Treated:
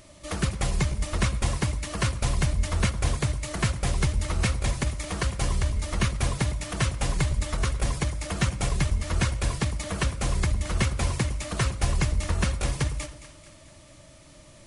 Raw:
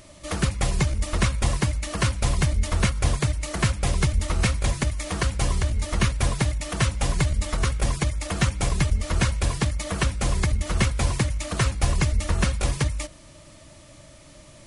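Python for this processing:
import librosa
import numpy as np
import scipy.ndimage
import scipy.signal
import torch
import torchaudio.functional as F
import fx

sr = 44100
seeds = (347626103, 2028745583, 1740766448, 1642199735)

y = fx.echo_split(x, sr, split_hz=990.0, low_ms=107, high_ms=219, feedback_pct=52, wet_db=-13)
y = F.gain(torch.from_numpy(y), -3.0).numpy()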